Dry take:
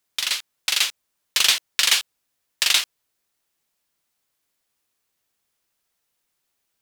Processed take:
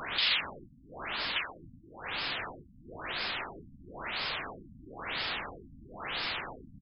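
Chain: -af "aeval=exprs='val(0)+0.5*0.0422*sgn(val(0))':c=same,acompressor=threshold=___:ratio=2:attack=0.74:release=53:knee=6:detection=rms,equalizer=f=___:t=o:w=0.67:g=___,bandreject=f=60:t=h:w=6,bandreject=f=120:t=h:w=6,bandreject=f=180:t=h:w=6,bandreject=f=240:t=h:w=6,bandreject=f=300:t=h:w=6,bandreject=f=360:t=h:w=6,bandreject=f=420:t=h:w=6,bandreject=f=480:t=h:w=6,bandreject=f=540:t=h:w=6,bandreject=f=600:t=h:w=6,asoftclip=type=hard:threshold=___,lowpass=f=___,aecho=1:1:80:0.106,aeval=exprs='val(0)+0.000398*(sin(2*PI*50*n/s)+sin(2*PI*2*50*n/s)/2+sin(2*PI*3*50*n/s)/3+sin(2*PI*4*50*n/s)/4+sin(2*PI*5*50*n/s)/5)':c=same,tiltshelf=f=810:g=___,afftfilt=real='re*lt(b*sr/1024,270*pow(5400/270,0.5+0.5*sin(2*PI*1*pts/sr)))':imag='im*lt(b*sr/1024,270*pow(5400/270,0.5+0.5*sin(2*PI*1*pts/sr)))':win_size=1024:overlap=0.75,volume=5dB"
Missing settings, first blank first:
-31dB, 6.3k, -7.5, -31dB, 8.1k, -3.5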